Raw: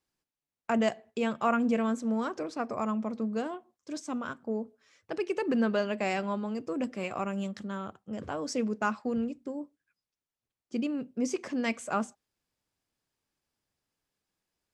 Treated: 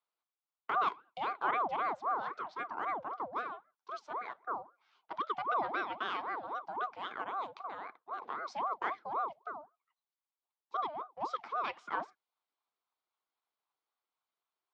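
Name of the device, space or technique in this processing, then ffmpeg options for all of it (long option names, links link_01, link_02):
voice changer toy: -af "aeval=exprs='val(0)*sin(2*PI*640*n/s+640*0.55/3.8*sin(2*PI*3.8*n/s))':channel_layout=same,highpass=560,equalizer=frequency=560:width_type=q:width=4:gain=-9,equalizer=frequency=1100:width_type=q:width=4:gain=3,equalizer=frequency=1800:width_type=q:width=4:gain=-8,equalizer=frequency=2700:width_type=q:width=4:gain=-6,lowpass=frequency=3800:width=0.5412,lowpass=frequency=3800:width=1.3066"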